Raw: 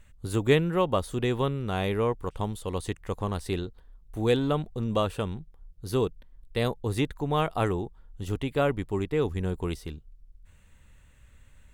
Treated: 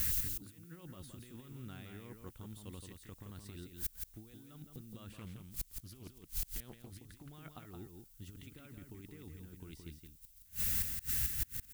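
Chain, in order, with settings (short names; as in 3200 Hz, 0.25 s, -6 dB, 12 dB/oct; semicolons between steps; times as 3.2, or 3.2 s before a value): HPF 58 Hz 6 dB/oct; band shelf 670 Hz -10.5 dB; negative-ratio compressor -33 dBFS, ratio -0.5; added noise violet -48 dBFS; flipped gate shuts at -36 dBFS, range -31 dB; echo 0.17 s -5.5 dB; 5.12–7.33 Doppler distortion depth 0.72 ms; gain +14 dB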